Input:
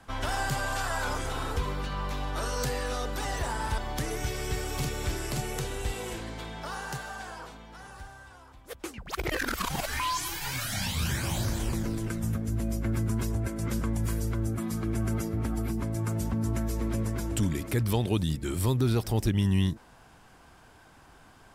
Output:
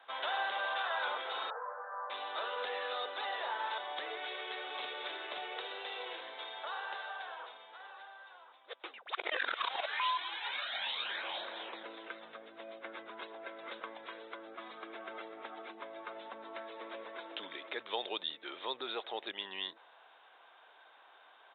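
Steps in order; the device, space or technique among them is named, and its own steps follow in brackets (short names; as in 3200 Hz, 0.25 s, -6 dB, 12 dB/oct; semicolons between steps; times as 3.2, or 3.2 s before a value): 1.5–2.1 Chebyshev band-pass 460–1700 Hz, order 5; musical greeting card (downsampling 8000 Hz; HPF 510 Hz 24 dB/oct; bell 3700 Hz +10 dB 0.25 oct); gain -3 dB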